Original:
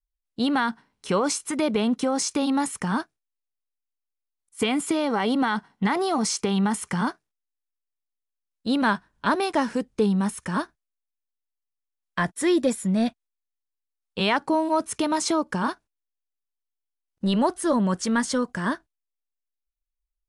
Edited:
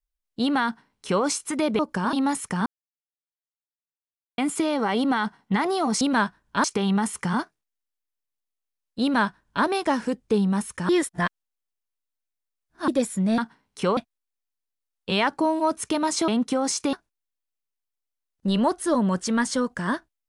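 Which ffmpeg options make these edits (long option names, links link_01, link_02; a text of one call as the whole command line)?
ffmpeg -i in.wav -filter_complex "[0:a]asplit=13[link_01][link_02][link_03][link_04][link_05][link_06][link_07][link_08][link_09][link_10][link_11][link_12][link_13];[link_01]atrim=end=1.792[link_14];[link_02]atrim=start=15.368:end=15.712[link_15];[link_03]atrim=start=2.438:end=2.97,asetpts=PTS-STARTPTS,afade=type=out:start_time=0.528:duration=0.004:curve=hsin[link_16];[link_04]atrim=start=2.97:end=4.69,asetpts=PTS-STARTPTS,volume=0[link_17];[link_05]atrim=start=4.69:end=6.322,asetpts=PTS-STARTPTS,afade=type=in:duration=0.004:curve=hsin[link_18];[link_06]atrim=start=8.698:end=9.332[link_19];[link_07]atrim=start=6.318:end=10.572[link_20];[link_08]atrim=start=10.568:end=12.562,asetpts=PTS-STARTPTS,areverse[link_21];[link_09]atrim=start=12.558:end=13.062[link_22];[link_10]atrim=start=0.648:end=1.242[link_23];[link_11]atrim=start=13.058:end=15.372[link_24];[link_12]atrim=start=1.788:end=2.442[link_25];[link_13]atrim=start=15.708[link_26];[link_14][link_15]acrossfade=duration=0.004:curve1=hsin:curve2=hsin[link_27];[link_16][link_17][link_18]concat=n=3:v=0:a=1[link_28];[link_27][link_28]acrossfade=duration=0.004:curve1=hsin:curve2=hsin[link_29];[link_29][link_19]acrossfade=duration=0.004:curve1=hsin:curve2=hsin[link_30];[link_30][link_20]acrossfade=duration=0.004:curve1=hsin:curve2=hsin[link_31];[link_31][link_21]acrossfade=duration=0.004:curve1=hsin:curve2=hsin[link_32];[link_32][link_22]acrossfade=duration=0.004:curve1=hsin:curve2=hsin[link_33];[link_33][link_23]acrossfade=duration=0.004:curve1=hsin:curve2=hsin[link_34];[link_34][link_24]acrossfade=duration=0.004:curve1=hsin:curve2=hsin[link_35];[link_35][link_25]acrossfade=duration=0.004:curve1=hsin:curve2=hsin[link_36];[link_36][link_26]acrossfade=duration=0.004:curve1=hsin:curve2=hsin" out.wav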